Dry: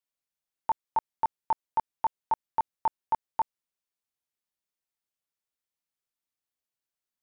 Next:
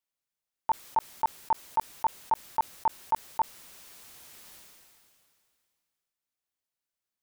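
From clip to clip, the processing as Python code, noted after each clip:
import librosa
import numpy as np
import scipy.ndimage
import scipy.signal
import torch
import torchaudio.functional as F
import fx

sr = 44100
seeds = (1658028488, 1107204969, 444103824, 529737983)

y = fx.sustainer(x, sr, db_per_s=25.0)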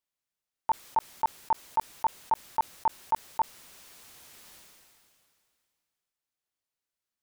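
y = fx.high_shelf(x, sr, hz=11000.0, db=-3.5)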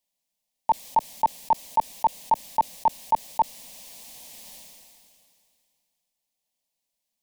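y = fx.fixed_phaser(x, sr, hz=370.0, stages=6)
y = F.gain(torch.from_numpy(y), 8.5).numpy()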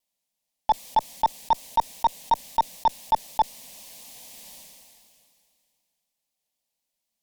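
y = fx.cheby_harmonics(x, sr, harmonics=(6,), levels_db=(-22,), full_scale_db=-11.0)
y = fx.vibrato(y, sr, rate_hz=4.0, depth_cents=52.0)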